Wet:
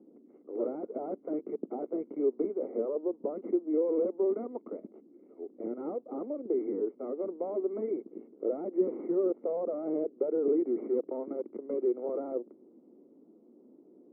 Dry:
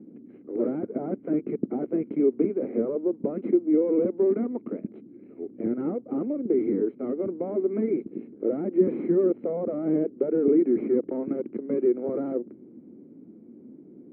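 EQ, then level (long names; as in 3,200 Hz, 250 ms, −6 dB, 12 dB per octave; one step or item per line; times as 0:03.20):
Savitzky-Golay smoothing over 65 samples
high-pass filter 510 Hz 12 dB per octave
0.0 dB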